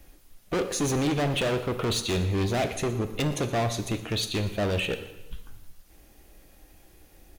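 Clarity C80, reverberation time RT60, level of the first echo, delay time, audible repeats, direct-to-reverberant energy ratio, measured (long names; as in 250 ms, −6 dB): 12.5 dB, 0.95 s, −18.0 dB, 119 ms, 3, 8.5 dB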